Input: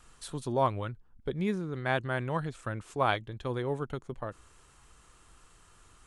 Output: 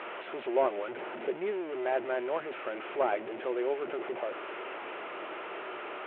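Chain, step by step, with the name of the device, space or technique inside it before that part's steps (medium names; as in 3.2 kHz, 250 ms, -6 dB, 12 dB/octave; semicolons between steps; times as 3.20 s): digital answering machine (band-pass 360–3000 Hz; one-bit delta coder 16 kbps, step -33 dBFS; cabinet simulation 360–3100 Hz, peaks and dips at 370 Hz +10 dB, 610 Hz +7 dB, 1.1 kHz -5 dB, 1.7 kHz -4 dB)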